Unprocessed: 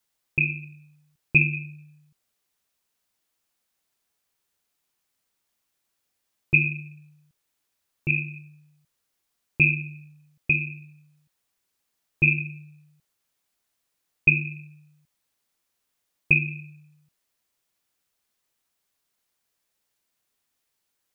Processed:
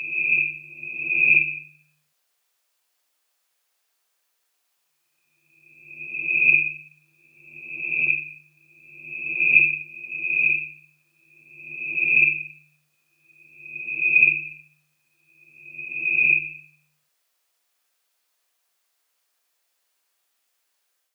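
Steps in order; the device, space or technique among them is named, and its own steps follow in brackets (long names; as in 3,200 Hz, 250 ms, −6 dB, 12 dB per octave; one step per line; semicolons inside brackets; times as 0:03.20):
ghost voice (reversed playback; convolution reverb RT60 1.4 s, pre-delay 40 ms, DRR −6 dB; reversed playback; high-pass filter 530 Hz 12 dB per octave)
level −1 dB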